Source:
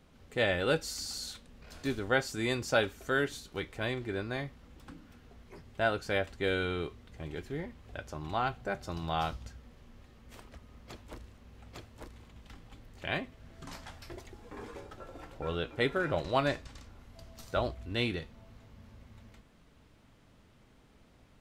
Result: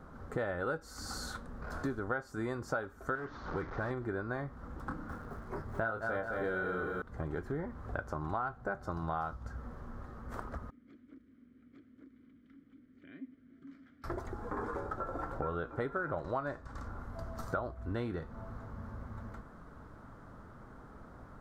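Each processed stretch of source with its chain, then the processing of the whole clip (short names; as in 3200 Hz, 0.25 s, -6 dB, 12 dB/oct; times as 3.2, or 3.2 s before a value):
3.15–3.91 delta modulation 32 kbps, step -41 dBFS + air absorption 110 m + overloaded stage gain 32.5 dB
4.87–7.02 doubler 27 ms -5 dB + lo-fi delay 0.213 s, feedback 55%, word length 9-bit, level -6 dB
10.7–14.04 compressor 2:1, threshold -51 dBFS + vowel filter i
whole clip: resonant high shelf 1900 Hz -11.5 dB, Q 3; compressor 6:1, threshold -43 dBFS; gain +9 dB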